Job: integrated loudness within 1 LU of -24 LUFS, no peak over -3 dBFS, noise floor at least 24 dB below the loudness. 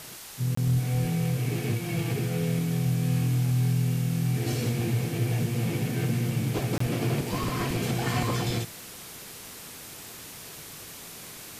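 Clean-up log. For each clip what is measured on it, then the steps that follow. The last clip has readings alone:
dropouts 2; longest dropout 24 ms; noise floor -43 dBFS; noise floor target -52 dBFS; loudness -27.5 LUFS; peak level -15.5 dBFS; loudness target -24.0 LUFS
-> interpolate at 0.55/6.78 s, 24 ms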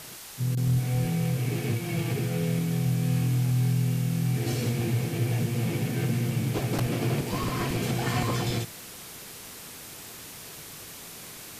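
dropouts 0; noise floor -43 dBFS; noise floor target -52 dBFS
-> noise reduction 9 dB, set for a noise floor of -43 dBFS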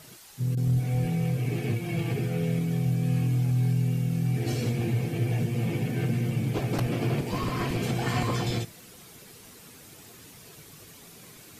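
noise floor -50 dBFS; noise floor target -52 dBFS
-> noise reduction 6 dB, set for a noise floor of -50 dBFS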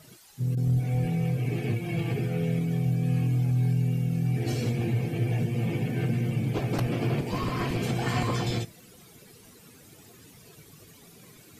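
noise floor -53 dBFS; loudness -28.0 LUFS; peak level -16.0 dBFS; loudness target -24.0 LUFS
-> trim +4 dB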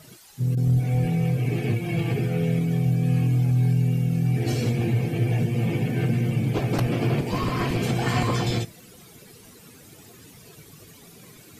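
loudness -24.0 LUFS; peak level -12.0 dBFS; noise floor -49 dBFS

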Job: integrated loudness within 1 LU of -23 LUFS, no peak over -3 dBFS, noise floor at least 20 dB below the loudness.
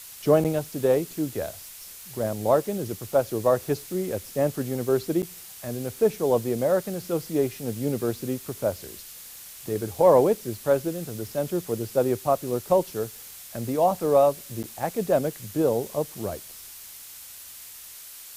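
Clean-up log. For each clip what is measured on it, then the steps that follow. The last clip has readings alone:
dropouts 3; longest dropout 8.2 ms; noise floor -43 dBFS; noise floor target -46 dBFS; loudness -25.5 LUFS; peak level -7.0 dBFS; loudness target -23.0 LUFS
-> interpolate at 0.44/5.22/14.63 s, 8.2 ms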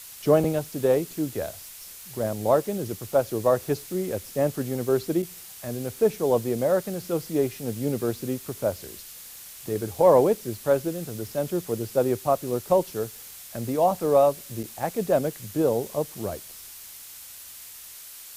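dropouts 0; noise floor -43 dBFS; noise floor target -46 dBFS
-> noise reduction 6 dB, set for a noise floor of -43 dBFS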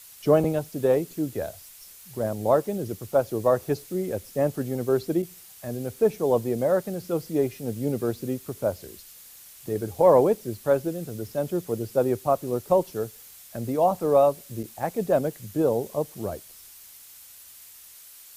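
noise floor -48 dBFS; loudness -25.5 LUFS; peak level -7.5 dBFS; loudness target -23.0 LUFS
-> trim +2.5 dB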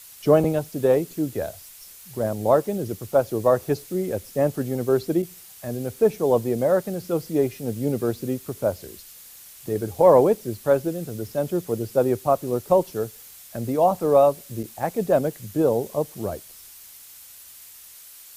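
loudness -23.0 LUFS; peak level -5.0 dBFS; noise floor -46 dBFS

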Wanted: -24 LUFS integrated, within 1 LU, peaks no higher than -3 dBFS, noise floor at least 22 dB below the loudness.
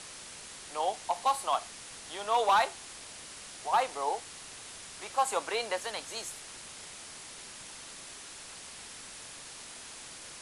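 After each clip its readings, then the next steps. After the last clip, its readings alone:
clipped samples 0.4%; clipping level -19.5 dBFS; noise floor -47 dBFS; noise floor target -57 dBFS; loudness -34.5 LUFS; peak level -19.5 dBFS; loudness target -24.0 LUFS
-> clip repair -19.5 dBFS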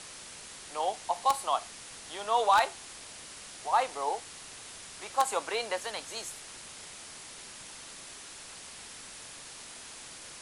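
clipped samples 0.0%; noise floor -47 dBFS; noise floor target -56 dBFS
-> noise reduction 9 dB, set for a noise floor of -47 dBFS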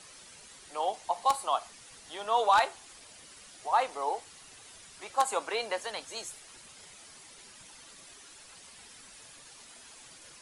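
noise floor -53 dBFS; loudness -31.0 LUFS; peak level -10.5 dBFS; loudness target -24.0 LUFS
-> trim +7 dB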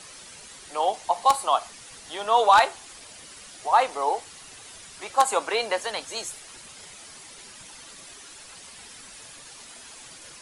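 loudness -24.0 LUFS; peak level -3.5 dBFS; noise floor -46 dBFS

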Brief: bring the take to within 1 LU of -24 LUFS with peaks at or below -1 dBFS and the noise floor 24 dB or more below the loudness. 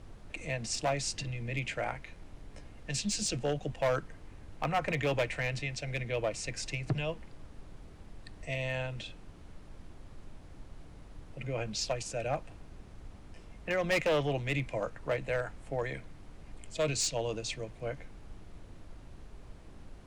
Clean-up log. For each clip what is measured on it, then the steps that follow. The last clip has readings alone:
clipped samples 0.7%; clipping level -24.0 dBFS; noise floor -52 dBFS; noise floor target -58 dBFS; loudness -34.0 LUFS; peak level -24.0 dBFS; loudness target -24.0 LUFS
-> clip repair -24 dBFS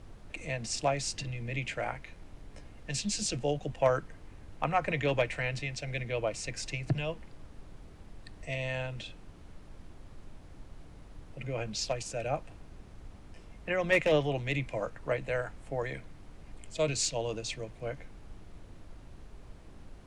clipped samples 0.0%; noise floor -52 dBFS; noise floor target -57 dBFS
-> noise print and reduce 6 dB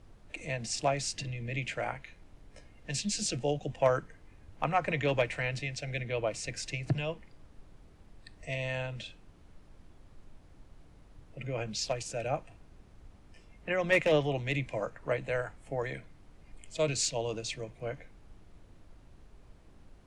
noise floor -57 dBFS; loudness -33.0 LUFS; peak level -15.0 dBFS; loudness target -24.0 LUFS
-> trim +9 dB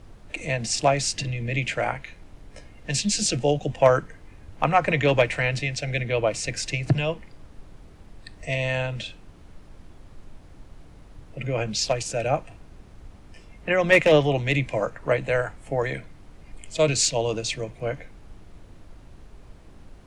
loudness -24.0 LUFS; peak level -6.0 dBFS; noise floor -48 dBFS

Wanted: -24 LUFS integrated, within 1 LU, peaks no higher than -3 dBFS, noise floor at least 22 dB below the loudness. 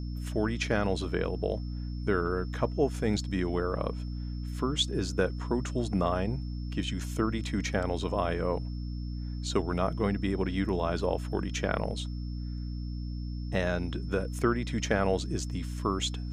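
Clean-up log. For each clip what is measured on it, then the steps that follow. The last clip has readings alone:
hum 60 Hz; highest harmonic 300 Hz; hum level -33 dBFS; steady tone 5.3 kHz; tone level -55 dBFS; loudness -31.5 LUFS; peak level -10.5 dBFS; loudness target -24.0 LUFS
-> hum notches 60/120/180/240/300 Hz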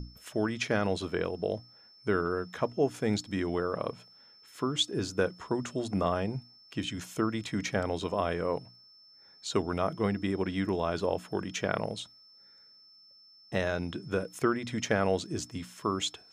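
hum not found; steady tone 5.3 kHz; tone level -55 dBFS
-> band-stop 5.3 kHz, Q 30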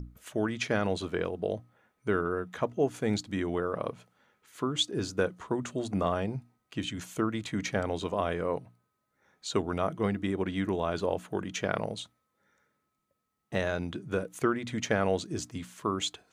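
steady tone not found; loudness -32.0 LUFS; peak level -11.5 dBFS; loudness target -24.0 LUFS
-> trim +8 dB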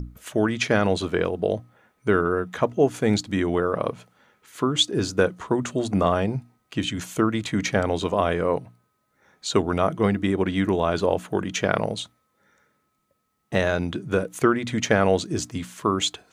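loudness -24.0 LUFS; peak level -3.5 dBFS; noise floor -72 dBFS

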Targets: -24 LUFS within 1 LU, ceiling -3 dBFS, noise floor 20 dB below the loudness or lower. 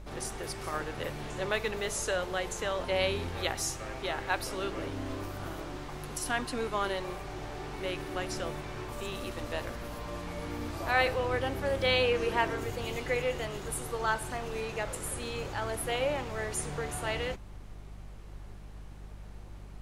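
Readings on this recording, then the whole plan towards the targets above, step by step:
hum 50 Hz; highest harmonic 200 Hz; hum level -44 dBFS; noise floor -46 dBFS; noise floor target -54 dBFS; loudness -33.5 LUFS; peak level -13.0 dBFS; loudness target -24.0 LUFS
-> de-hum 50 Hz, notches 4; noise print and reduce 8 dB; trim +9.5 dB

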